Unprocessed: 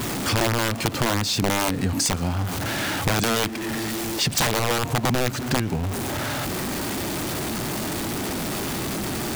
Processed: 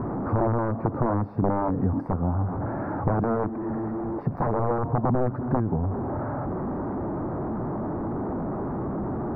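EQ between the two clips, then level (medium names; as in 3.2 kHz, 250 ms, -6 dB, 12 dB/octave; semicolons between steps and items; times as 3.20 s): inverse Chebyshev low-pass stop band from 2.9 kHz, stop band 50 dB; 0.0 dB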